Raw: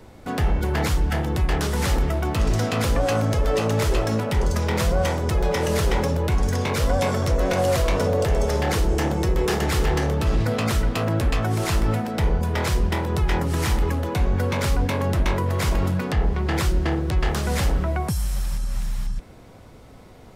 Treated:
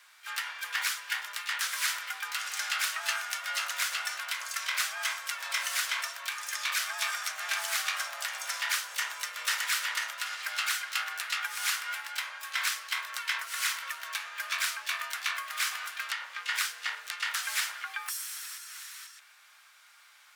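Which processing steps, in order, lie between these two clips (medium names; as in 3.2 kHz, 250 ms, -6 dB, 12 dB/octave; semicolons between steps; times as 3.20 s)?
Chebyshev high-pass 1.3 kHz, order 3; frequency shift +120 Hz; harmony voices +7 st -9 dB, +12 st -14 dB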